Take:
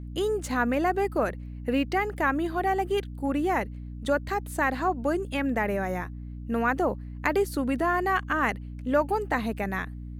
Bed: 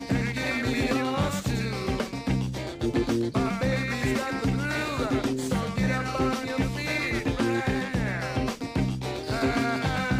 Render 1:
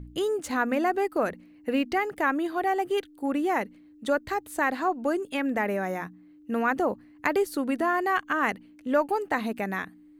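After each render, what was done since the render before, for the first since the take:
hum removal 60 Hz, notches 4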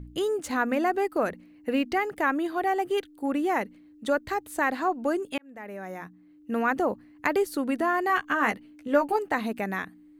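0:05.38–0:06.57: fade in linear
0:08.08–0:09.19: double-tracking delay 14 ms −5.5 dB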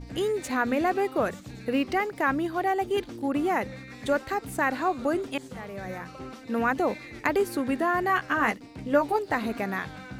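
mix in bed −15 dB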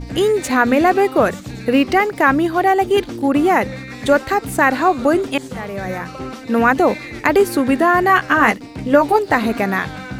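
level +11.5 dB
brickwall limiter −1 dBFS, peak gain reduction 3 dB

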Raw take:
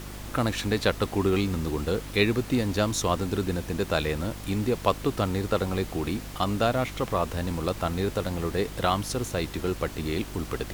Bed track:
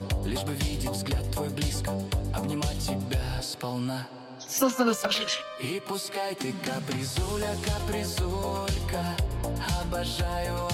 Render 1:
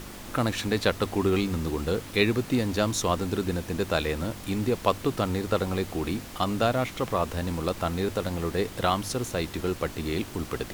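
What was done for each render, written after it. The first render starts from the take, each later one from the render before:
hum removal 50 Hz, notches 3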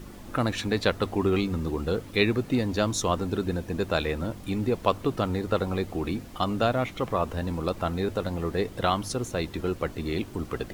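broadband denoise 9 dB, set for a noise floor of −41 dBFS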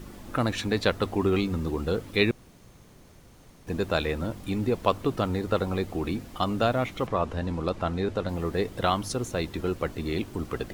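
0:02.31–0:03.67: fill with room tone
0:07.07–0:08.29: high-frequency loss of the air 52 metres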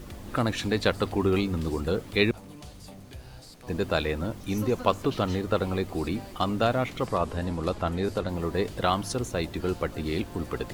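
mix in bed track −16 dB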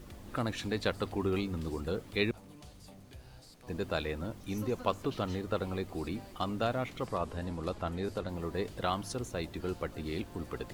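level −7.5 dB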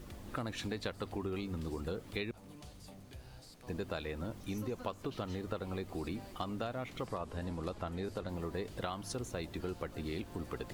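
downward compressor 6 to 1, threshold −35 dBFS, peak gain reduction 11 dB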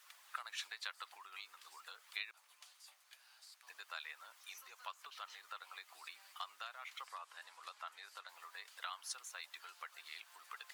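high-pass filter 1,100 Hz 24 dB per octave
harmonic and percussive parts rebalanced harmonic −5 dB

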